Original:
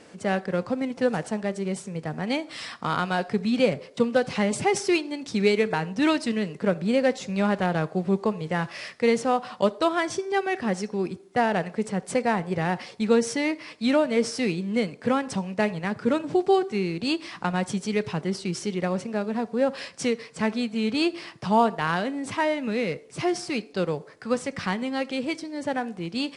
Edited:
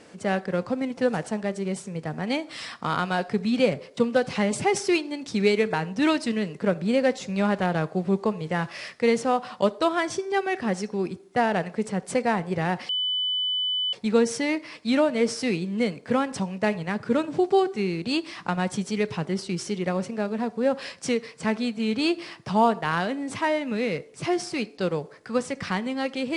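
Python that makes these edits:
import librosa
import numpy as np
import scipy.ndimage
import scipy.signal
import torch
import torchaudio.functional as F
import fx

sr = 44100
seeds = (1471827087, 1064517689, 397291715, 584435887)

y = fx.edit(x, sr, fx.insert_tone(at_s=12.89, length_s=1.04, hz=3000.0, db=-23.0), tone=tone)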